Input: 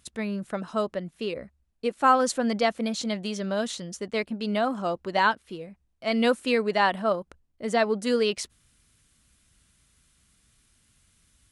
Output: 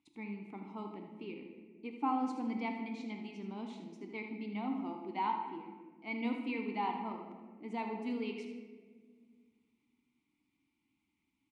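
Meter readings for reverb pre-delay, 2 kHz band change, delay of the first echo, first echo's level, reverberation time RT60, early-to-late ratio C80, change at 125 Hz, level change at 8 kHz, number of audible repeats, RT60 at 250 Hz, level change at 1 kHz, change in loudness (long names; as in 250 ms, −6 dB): 3 ms, −16.5 dB, 78 ms, −10.0 dB, 1.7 s, 7.5 dB, −12.5 dB, below −30 dB, 1, 2.7 s, −11.5 dB, −13.0 dB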